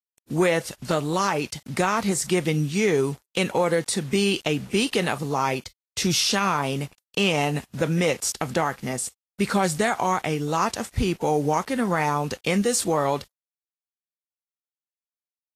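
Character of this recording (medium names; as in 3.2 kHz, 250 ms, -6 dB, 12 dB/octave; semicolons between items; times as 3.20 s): a quantiser's noise floor 8-bit, dither none; Vorbis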